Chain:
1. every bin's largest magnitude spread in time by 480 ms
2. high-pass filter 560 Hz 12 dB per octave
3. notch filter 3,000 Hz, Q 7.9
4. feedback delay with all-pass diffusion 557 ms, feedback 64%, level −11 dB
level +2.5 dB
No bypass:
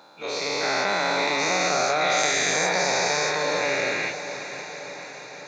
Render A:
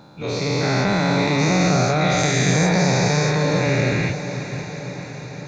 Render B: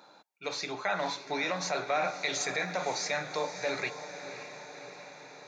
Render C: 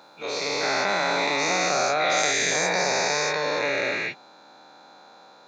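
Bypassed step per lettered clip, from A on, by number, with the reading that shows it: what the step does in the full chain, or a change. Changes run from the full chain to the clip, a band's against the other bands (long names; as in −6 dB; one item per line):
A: 2, 125 Hz band +22.5 dB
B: 1, 125 Hz band +3.0 dB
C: 4, echo-to-direct ratio −8.5 dB to none audible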